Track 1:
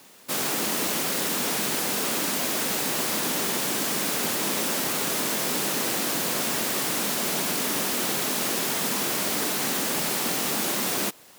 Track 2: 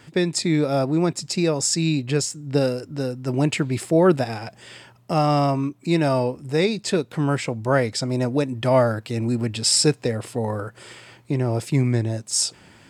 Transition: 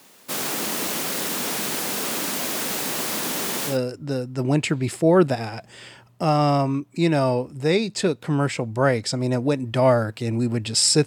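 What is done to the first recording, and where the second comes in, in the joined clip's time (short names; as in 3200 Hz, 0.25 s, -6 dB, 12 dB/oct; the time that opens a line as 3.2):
track 1
3.72 switch to track 2 from 2.61 s, crossfade 0.12 s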